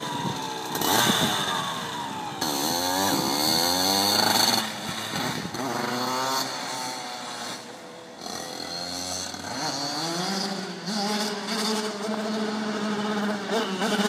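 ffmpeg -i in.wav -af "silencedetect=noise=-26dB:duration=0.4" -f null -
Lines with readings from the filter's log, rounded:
silence_start: 7.56
silence_end: 8.22 | silence_duration: 0.65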